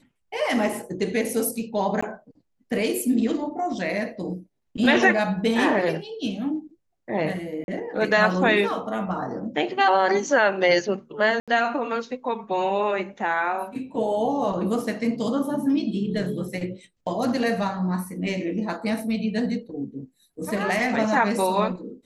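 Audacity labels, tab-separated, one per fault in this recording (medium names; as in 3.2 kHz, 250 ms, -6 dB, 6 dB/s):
2.010000	2.020000	dropout 15 ms
7.640000	7.680000	dropout 41 ms
11.400000	11.480000	dropout 76 ms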